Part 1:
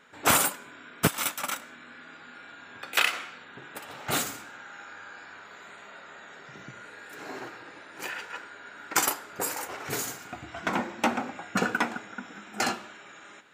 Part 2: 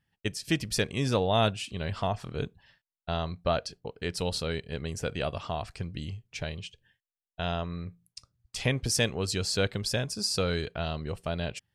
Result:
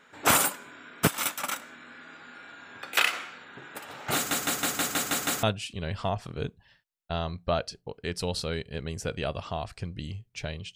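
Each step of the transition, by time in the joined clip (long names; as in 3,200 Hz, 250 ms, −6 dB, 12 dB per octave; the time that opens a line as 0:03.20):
part 1
0:04.15: stutter in place 0.16 s, 8 plays
0:05.43: continue with part 2 from 0:01.41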